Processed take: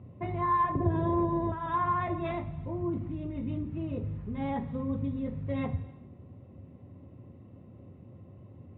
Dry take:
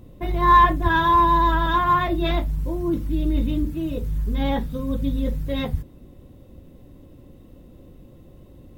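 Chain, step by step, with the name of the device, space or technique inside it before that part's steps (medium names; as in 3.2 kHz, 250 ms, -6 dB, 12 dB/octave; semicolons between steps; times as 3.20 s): 0.75–1.52 s: resonant low shelf 770 Hz +13.5 dB, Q 3; bass amplifier (compression 3:1, threshold -23 dBFS, peak gain reduction 16 dB; cabinet simulation 87–2300 Hz, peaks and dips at 100 Hz +9 dB, 310 Hz -5 dB, 490 Hz -5 dB, 1.6 kHz -8 dB); gated-style reverb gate 440 ms falling, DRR 11.5 dB; trim -2.5 dB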